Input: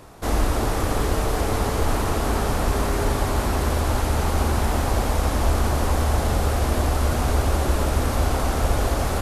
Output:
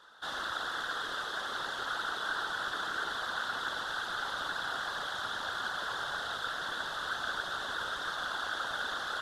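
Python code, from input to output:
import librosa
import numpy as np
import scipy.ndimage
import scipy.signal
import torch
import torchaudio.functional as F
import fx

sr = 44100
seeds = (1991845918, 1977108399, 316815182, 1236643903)

y = fx.double_bandpass(x, sr, hz=2300.0, octaves=1.2)
y = fx.whisperise(y, sr, seeds[0])
y = y * librosa.db_to_amplitude(3.5)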